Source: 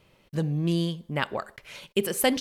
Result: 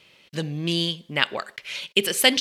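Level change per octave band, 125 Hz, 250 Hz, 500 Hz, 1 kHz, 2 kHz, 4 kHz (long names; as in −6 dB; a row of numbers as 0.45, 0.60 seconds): −3.0, −1.0, +0.5, +1.0, +8.5, +12.5 decibels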